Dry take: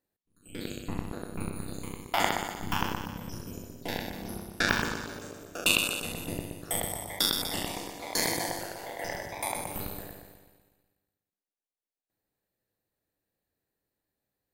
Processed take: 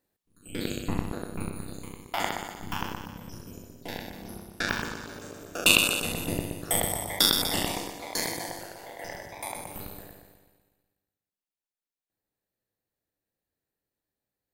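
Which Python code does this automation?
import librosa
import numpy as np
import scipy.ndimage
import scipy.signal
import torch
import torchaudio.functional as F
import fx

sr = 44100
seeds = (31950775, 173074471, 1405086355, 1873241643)

y = fx.gain(x, sr, db=fx.line((0.89, 5.5), (1.93, -3.0), (4.97, -3.0), (5.7, 5.0), (7.71, 5.0), (8.33, -3.5)))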